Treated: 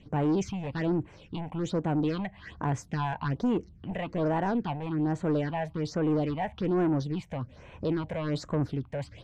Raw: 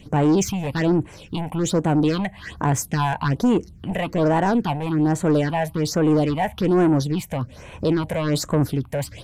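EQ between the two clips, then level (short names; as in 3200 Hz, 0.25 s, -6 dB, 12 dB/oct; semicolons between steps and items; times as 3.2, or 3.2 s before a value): air absorption 130 m; -8.5 dB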